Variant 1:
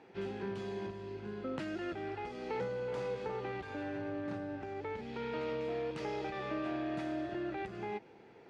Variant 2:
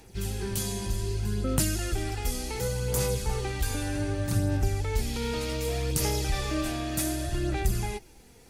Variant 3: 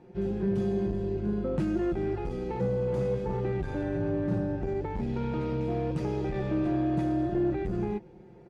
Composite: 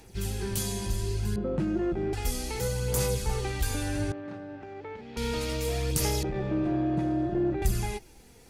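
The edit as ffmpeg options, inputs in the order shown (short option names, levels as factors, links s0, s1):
-filter_complex "[2:a]asplit=2[s0][s1];[1:a]asplit=4[s2][s3][s4][s5];[s2]atrim=end=1.362[s6];[s0]atrim=start=1.358:end=2.132[s7];[s3]atrim=start=2.128:end=4.122[s8];[0:a]atrim=start=4.118:end=5.172[s9];[s4]atrim=start=5.168:end=6.232[s10];[s1]atrim=start=6.228:end=7.622[s11];[s5]atrim=start=7.618[s12];[s6][s7]acrossfade=d=0.004:c1=hsin:c2=hsin[s13];[s13][s8]acrossfade=d=0.004:c1=hsin:c2=hsin[s14];[s14][s9]acrossfade=d=0.004:c1=hsin:c2=hsin[s15];[s15][s10]acrossfade=d=0.004:c1=hsin:c2=hsin[s16];[s16][s11]acrossfade=d=0.004:c1=hsin:c2=hsin[s17];[s17][s12]acrossfade=d=0.004:c1=hsin:c2=hsin"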